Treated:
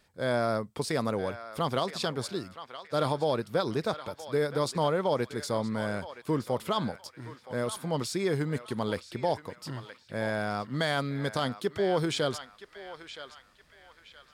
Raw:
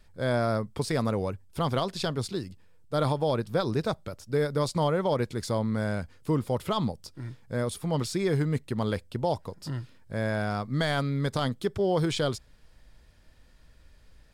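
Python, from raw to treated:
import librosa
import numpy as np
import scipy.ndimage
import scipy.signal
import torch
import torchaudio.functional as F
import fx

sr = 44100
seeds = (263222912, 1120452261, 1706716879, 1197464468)

p1 = fx.highpass(x, sr, hz=230.0, slope=6)
y = p1 + fx.echo_banded(p1, sr, ms=970, feedback_pct=42, hz=2000.0, wet_db=-9.0, dry=0)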